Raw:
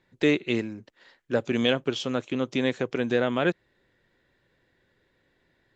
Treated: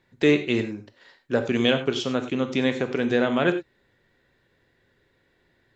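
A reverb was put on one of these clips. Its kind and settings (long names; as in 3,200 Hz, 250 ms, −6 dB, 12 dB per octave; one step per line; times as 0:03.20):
reverb whose tail is shaped and stops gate 120 ms flat, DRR 7.5 dB
level +2 dB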